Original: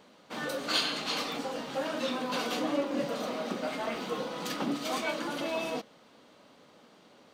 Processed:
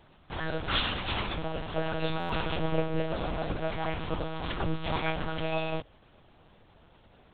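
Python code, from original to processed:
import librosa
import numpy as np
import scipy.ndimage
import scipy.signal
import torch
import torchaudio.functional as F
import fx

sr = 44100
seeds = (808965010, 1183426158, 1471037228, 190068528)

p1 = fx.quant_dither(x, sr, seeds[0], bits=8, dither='none')
p2 = x + F.gain(torch.from_numpy(p1), -8.5).numpy()
p3 = fx.lpc_monotone(p2, sr, seeds[1], pitch_hz=160.0, order=8)
y = fx.buffer_glitch(p3, sr, at_s=(2.19,), block=512, repeats=8)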